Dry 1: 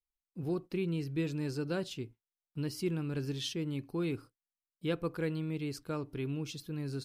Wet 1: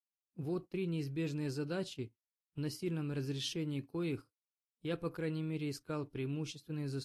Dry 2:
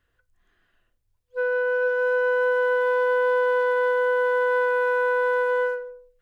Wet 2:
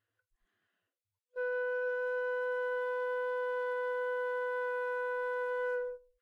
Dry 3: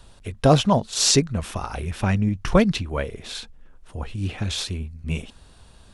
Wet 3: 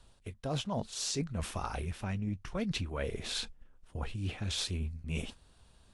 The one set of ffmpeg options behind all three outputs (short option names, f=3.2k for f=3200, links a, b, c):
-af "agate=range=-11dB:threshold=-41dB:ratio=16:detection=peak,areverse,acompressor=threshold=-31dB:ratio=10,areverse,volume=-1dB" -ar 32000 -c:a libvorbis -b:a 48k